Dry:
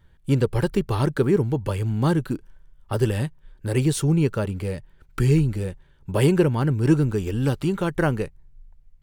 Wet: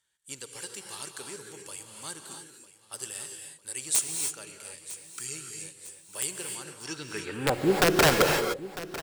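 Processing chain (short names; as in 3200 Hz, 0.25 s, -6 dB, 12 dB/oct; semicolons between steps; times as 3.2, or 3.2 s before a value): band-pass sweep 8000 Hz -> 540 Hz, 6.78–7.59; wrapped overs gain 23 dB; on a send: feedback echo 0.951 s, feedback 50%, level -16 dB; on the sum: non-linear reverb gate 0.33 s rising, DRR 3.5 dB; gain +9 dB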